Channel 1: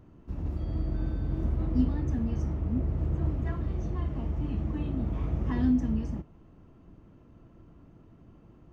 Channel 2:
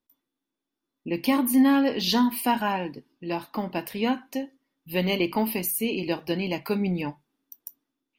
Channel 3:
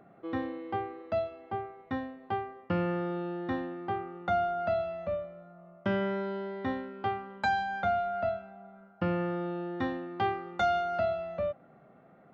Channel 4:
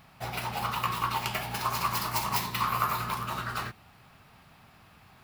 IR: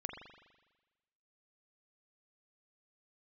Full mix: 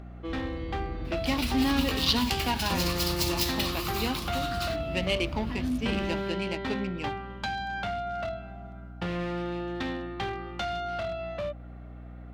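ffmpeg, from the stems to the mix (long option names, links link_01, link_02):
-filter_complex "[0:a]volume=-6dB[link_01];[1:a]adynamicsmooth=sensitivity=4:basefreq=1300,volume=-8dB[link_02];[2:a]acrossover=split=380[link_03][link_04];[link_04]acompressor=threshold=-35dB:ratio=6[link_05];[link_03][link_05]amix=inputs=2:normalize=0,volume=31.5dB,asoftclip=hard,volume=-31.5dB,volume=2dB[link_06];[3:a]acrossover=split=140|3000[link_07][link_08][link_09];[link_08]acompressor=threshold=-45dB:ratio=3[link_10];[link_07][link_10][link_09]amix=inputs=3:normalize=0,adelay=1050,volume=-1.5dB[link_11];[link_01][link_02][link_06][link_11]amix=inputs=4:normalize=0,equalizer=frequency=3700:width_type=o:width=1.9:gain=10.5,aeval=exprs='val(0)+0.00794*(sin(2*PI*60*n/s)+sin(2*PI*2*60*n/s)/2+sin(2*PI*3*60*n/s)/3+sin(2*PI*4*60*n/s)/4+sin(2*PI*5*60*n/s)/5)':channel_layout=same"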